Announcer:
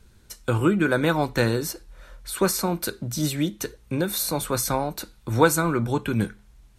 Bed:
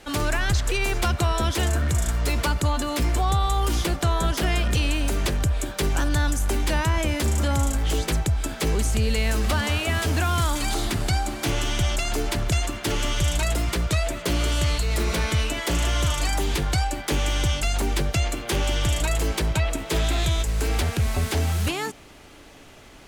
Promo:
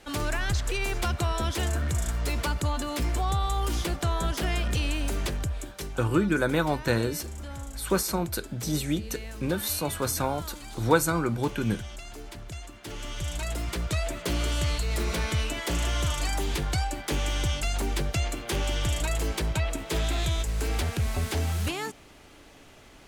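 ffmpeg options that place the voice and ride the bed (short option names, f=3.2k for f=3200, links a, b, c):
-filter_complex "[0:a]adelay=5500,volume=-3.5dB[a];[1:a]volume=7dB,afade=t=out:st=5.18:d=0.79:silence=0.266073,afade=t=in:st=12.73:d=1.4:silence=0.251189[b];[a][b]amix=inputs=2:normalize=0"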